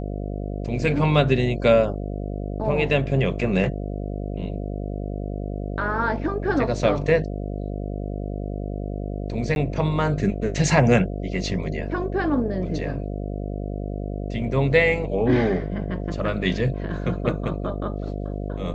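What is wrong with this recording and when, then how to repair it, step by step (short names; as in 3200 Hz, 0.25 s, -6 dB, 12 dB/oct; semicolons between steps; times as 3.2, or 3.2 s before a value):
buzz 50 Hz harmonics 14 -29 dBFS
9.55–9.56 gap 11 ms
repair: de-hum 50 Hz, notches 14; interpolate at 9.55, 11 ms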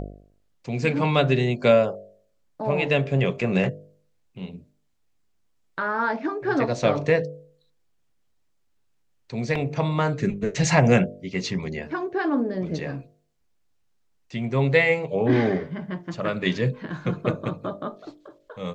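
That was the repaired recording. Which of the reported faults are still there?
none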